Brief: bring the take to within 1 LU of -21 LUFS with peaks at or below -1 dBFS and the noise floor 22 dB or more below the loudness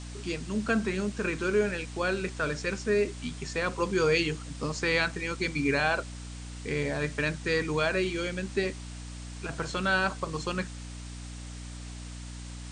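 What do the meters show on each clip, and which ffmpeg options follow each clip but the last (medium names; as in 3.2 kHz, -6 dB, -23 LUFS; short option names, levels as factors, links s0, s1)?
hum 60 Hz; highest harmonic 300 Hz; hum level -39 dBFS; noise floor -41 dBFS; noise floor target -52 dBFS; loudness -29.5 LUFS; peak level -11.5 dBFS; loudness target -21.0 LUFS
-> -af "bandreject=f=60:t=h:w=4,bandreject=f=120:t=h:w=4,bandreject=f=180:t=h:w=4,bandreject=f=240:t=h:w=4,bandreject=f=300:t=h:w=4"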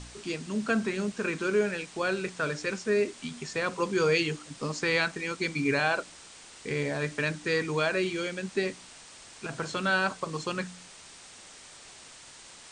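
hum not found; noise floor -50 dBFS; noise floor target -52 dBFS
-> -af "afftdn=nr=6:nf=-50"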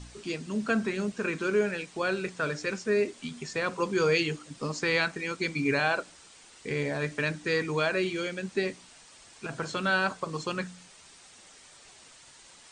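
noise floor -54 dBFS; loudness -29.5 LUFS; peak level -11.5 dBFS; loudness target -21.0 LUFS
-> -af "volume=2.66"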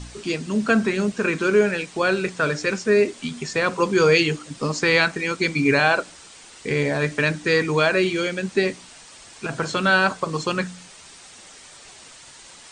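loudness -21.0 LUFS; peak level -3.0 dBFS; noise floor -45 dBFS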